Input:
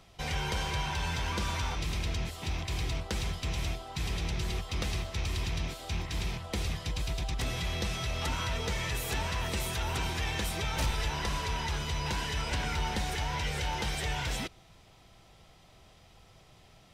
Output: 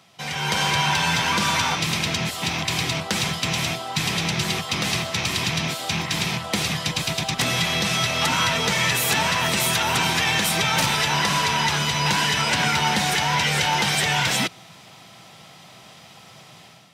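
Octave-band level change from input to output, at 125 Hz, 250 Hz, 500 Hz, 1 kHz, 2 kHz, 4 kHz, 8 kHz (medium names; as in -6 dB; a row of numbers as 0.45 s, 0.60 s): +6.5 dB, +12.0 dB, +10.0 dB, +13.5 dB, +15.0 dB, +15.0 dB, +15.0 dB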